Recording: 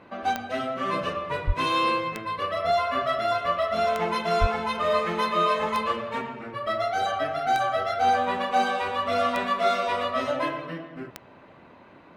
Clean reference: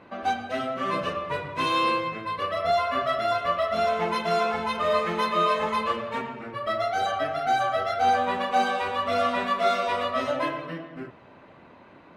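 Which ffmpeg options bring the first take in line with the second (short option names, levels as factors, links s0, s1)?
-filter_complex "[0:a]adeclick=t=4,asplit=3[s0][s1][s2];[s0]afade=t=out:st=1.46:d=0.02[s3];[s1]highpass=f=140:w=0.5412,highpass=f=140:w=1.3066,afade=t=in:st=1.46:d=0.02,afade=t=out:st=1.58:d=0.02[s4];[s2]afade=t=in:st=1.58:d=0.02[s5];[s3][s4][s5]amix=inputs=3:normalize=0,asplit=3[s6][s7][s8];[s6]afade=t=out:st=4.4:d=0.02[s9];[s7]highpass=f=140:w=0.5412,highpass=f=140:w=1.3066,afade=t=in:st=4.4:d=0.02,afade=t=out:st=4.52:d=0.02[s10];[s8]afade=t=in:st=4.52:d=0.02[s11];[s9][s10][s11]amix=inputs=3:normalize=0"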